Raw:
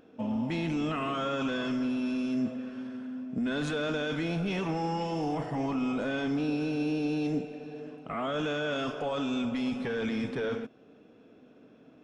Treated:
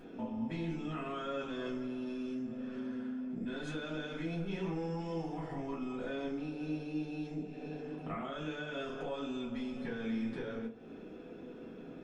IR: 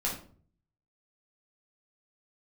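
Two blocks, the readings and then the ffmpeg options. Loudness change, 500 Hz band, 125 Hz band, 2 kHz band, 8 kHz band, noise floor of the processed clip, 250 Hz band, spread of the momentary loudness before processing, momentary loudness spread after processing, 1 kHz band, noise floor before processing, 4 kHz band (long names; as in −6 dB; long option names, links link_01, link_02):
−8.0 dB, −7.5 dB, −6.5 dB, −9.0 dB, can't be measured, −49 dBFS, −7.5 dB, 8 LU, 6 LU, −9.5 dB, −57 dBFS, −9.5 dB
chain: -filter_complex "[0:a]acompressor=threshold=-44dB:ratio=12[link_01];[1:a]atrim=start_sample=2205,asetrate=79380,aresample=44100[link_02];[link_01][link_02]afir=irnorm=-1:irlink=0,volume=5dB"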